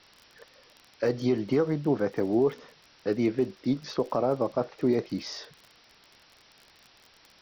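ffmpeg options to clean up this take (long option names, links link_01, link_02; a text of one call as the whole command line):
ffmpeg -i in.wav -af "adeclick=threshold=4,afwtdn=0.0022" out.wav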